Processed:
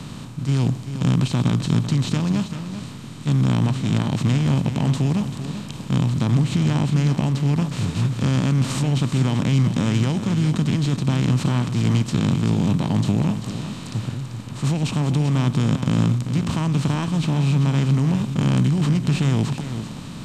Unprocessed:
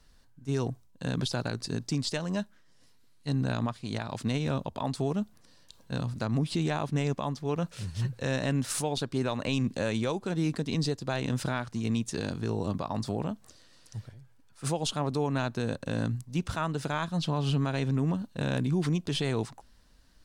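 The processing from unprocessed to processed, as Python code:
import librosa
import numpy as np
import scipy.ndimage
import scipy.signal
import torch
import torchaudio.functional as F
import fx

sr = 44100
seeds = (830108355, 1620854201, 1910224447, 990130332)

y = fx.bin_compress(x, sr, power=0.4)
y = fx.graphic_eq(y, sr, hz=(125, 250, 500), db=(8, 10, -4))
y = fx.formant_shift(y, sr, semitones=-3)
y = y + 10.0 ** (-10.0 / 20.0) * np.pad(y, (int(389 * sr / 1000.0), 0))[:len(y)]
y = y * librosa.db_to_amplitude(-3.0)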